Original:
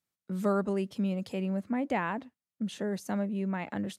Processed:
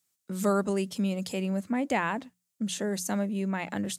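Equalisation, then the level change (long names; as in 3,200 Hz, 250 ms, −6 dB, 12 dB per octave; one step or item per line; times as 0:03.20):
high-shelf EQ 3,500 Hz +10.5 dB
parametric band 7,400 Hz +5 dB 0.65 octaves
mains-hum notches 60/120/180 Hz
+2.0 dB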